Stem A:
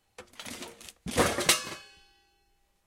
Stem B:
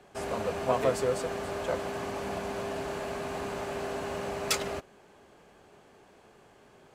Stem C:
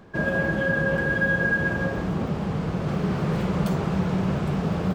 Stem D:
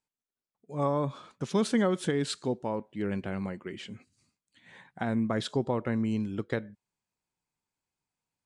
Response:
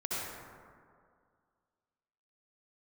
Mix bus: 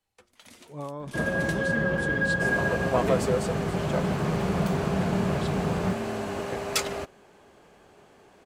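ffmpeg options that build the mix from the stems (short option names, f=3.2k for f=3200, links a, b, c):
-filter_complex "[0:a]acrossover=split=450[a][b];[b]acompressor=threshold=-30dB:ratio=6[c];[a][c]amix=inputs=2:normalize=0,volume=-10dB[d];[1:a]adelay=2250,volume=2dB[e];[2:a]adelay=1000,volume=-3dB[f];[3:a]acompressor=threshold=-29dB:ratio=3,volume=-4dB[g];[d][e][f][g]amix=inputs=4:normalize=0"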